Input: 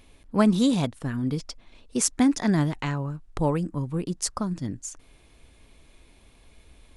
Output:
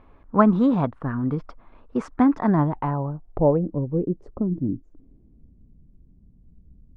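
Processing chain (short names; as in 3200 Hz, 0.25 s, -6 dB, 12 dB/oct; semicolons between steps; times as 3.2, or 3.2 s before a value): low-pass sweep 1200 Hz -> 180 Hz, 2.3–5.76; gain +2 dB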